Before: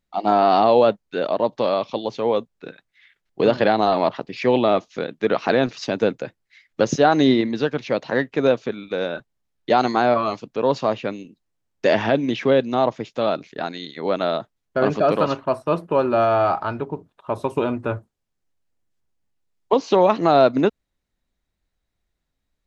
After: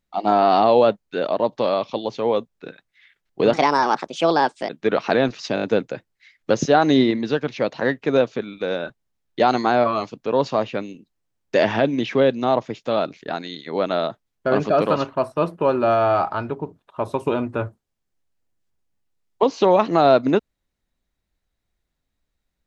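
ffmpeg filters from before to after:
ffmpeg -i in.wav -filter_complex "[0:a]asplit=7[link_01][link_02][link_03][link_04][link_05][link_06][link_07];[link_01]atrim=end=3.534[link_08];[link_02]atrim=start=3.53:end=5.07,asetpts=PTS-STARTPTS,asetrate=58653,aresample=44100,atrim=end_sample=51063,asetpts=PTS-STARTPTS[link_09];[link_03]atrim=start=5.066:end=5.952[link_10];[link_04]atrim=start=5.928:end=5.952[link_11];[link_05]atrim=start=5.928:end=5.952[link_12];[link_06]atrim=start=5.928:end=5.952[link_13];[link_07]atrim=start=5.928[link_14];[link_08][link_09]acrossfade=duration=0.004:curve1=hsin:curve2=hsin[link_15];[link_15][link_10]acrossfade=duration=0.004:curve1=hsin:curve2=hsin[link_16];[link_16][link_11]acrossfade=duration=0.004:curve1=hsin:curve2=hsin[link_17];[link_17][link_12]acrossfade=duration=0.004:curve1=hsin:curve2=hsin[link_18];[link_18][link_13]acrossfade=duration=0.004:curve1=hsin:curve2=hsin[link_19];[link_19][link_14]acrossfade=duration=0.004:curve1=hsin:curve2=hsin" out.wav

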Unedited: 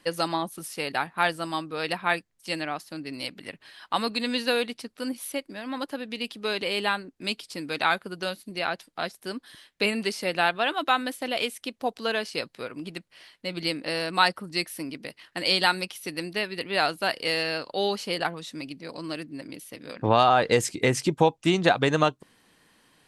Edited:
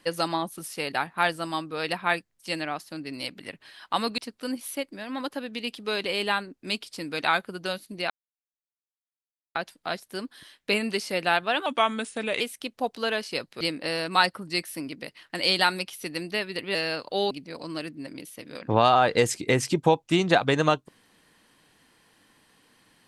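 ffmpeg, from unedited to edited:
ffmpeg -i in.wav -filter_complex "[0:a]asplit=8[link_01][link_02][link_03][link_04][link_05][link_06][link_07][link_08];[link_01]atrim=end=4.182[link_09];[link_02]atrim=start=4.748:end=8.67,asetpts=PTS-STARTPTS,afade=type=out:start_time=3.918:duration=0.004:curve=hsin,apad=pad_dur=1.45[link_10];[link_03]atrim=start=8.67:end=10.784,asetpts=PTS-STARTPTS,afade=type=in:duration=0.004:curve=hsin[link_11];[link_04]atrim=start=10.78:end=11.43,asetpts=PTS-STARTPTS,asetrate=38367,aresample=44100,atrim=end_sample=32948,asetpts=PTS-STARTPTS[link_12];[link_05]atrim=start=11.426:end=12.632[link_13];[link_06]atrim=start=13.628:end=16.772[link_14];[link_07]atrim=start=17.368:end=17.932[link_15];[link_08]atrim=start=18.648[link_16];[link_10][link_11]concat=n=2:v=0:a=1[link_17];[link_09][link_17]acrossfade=duration=0.004:curve1=hsin:curve2=hsin[link_18];[link_18][link_12]acrossfade=duration=0.004:curve1=hsin:curve2=hsin[link_19];[link_19][link_13]acrossfade=duration=0.004:curve1=hsin:curve2=hsin[link_20];[link_20][link_14]acrossfade=duration=0.004:curve1=hsin:curve2=hsin[link_21];[link_21][link_15]acrossfade=duration=0.004:curve1=hsin:curve2=hsin[link_22];[link_22][link_16]acrossfade=duration=0.004:curve1=hsin:curve2=hsin" out.wav

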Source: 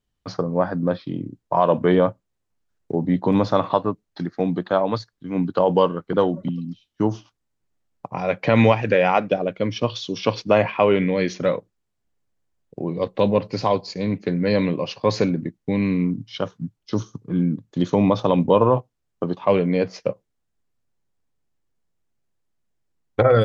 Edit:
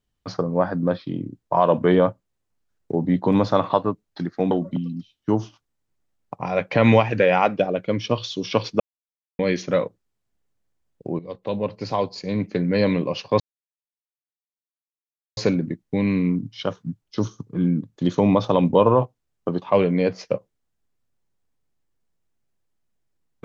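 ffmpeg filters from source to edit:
ffmpeg -i in.wav -filter_complex "[0:a]asplit=6[link_01][link_02][link_03][link_04][link_05][link_06];[link_01]atrim=end=4.512[link_07];[link_02]atrim=start=6.228:end=10.52,asetpts=PTS-STARTPTS,afade=type=out:start_time=4.288:duration=0.004:curve=hsin[link_08];[link_03]atrim=start=10.52:end=11.11,asetpts=PTS-STARTPTS,volume=0[link_09];[link_04]atrim=start=11.11:end=12.91,asetpts=PTS-STARTPTS,afade=type=in:duration=0.004:curve=hsin,afade=type=out:start_time=1.796:duration=0.004:curve=hsin:silence=0.223872[link_10];[link_05]atrim=start=12.91:end=15.12,asetpts=PTS-STARTPTS,afade=type=in:duration=1.31:silence=0.223872,afade=type=out:start_time=2.206:duration=0.004:curve=hsin,apad=pad_dur=1.97[link_11];[link_06]atrim=start=15.12,asetpts=PTS-STARTPTS,afade=type=in:duration=0.004:curve=hsin[link_12];[link_08][link_09][link_10][link_11][link_12]concat=n=5:v=0:a=1[link_13];[link_07][link_13]acrossfade=duration=0.004:curve1=hsin:curve2=hsin" out.wav

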